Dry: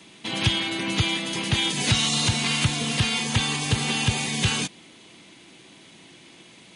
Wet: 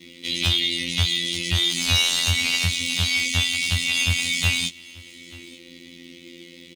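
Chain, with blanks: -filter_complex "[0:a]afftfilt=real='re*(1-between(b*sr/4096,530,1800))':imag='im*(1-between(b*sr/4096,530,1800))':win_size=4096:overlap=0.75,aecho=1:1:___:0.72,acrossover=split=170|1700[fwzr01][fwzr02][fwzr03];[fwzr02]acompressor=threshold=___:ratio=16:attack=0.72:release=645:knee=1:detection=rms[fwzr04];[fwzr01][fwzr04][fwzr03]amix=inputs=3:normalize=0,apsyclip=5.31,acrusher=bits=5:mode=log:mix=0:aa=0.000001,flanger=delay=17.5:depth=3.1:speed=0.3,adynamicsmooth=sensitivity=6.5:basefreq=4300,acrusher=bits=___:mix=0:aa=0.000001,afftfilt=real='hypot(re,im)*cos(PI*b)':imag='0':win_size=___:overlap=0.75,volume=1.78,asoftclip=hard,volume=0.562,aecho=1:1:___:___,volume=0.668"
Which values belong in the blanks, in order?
3.6, 0.00891, 8, 2048, 885, 0.075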